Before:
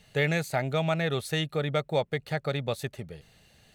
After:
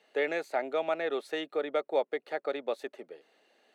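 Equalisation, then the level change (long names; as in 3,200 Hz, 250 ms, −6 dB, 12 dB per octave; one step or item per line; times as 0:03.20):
Butterworth high-pass 290 Hz 36 dB per octave
low-pass filter 1,300 Hz 6 dB per octave
0.0 dB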